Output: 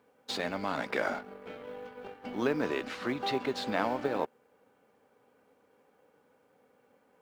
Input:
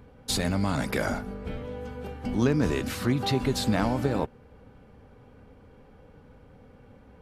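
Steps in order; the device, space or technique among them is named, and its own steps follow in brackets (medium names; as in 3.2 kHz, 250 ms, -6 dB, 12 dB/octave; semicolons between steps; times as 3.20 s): phone line with mismatched companding (band-pass 370–3500 Hz; companding laws mixed up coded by A)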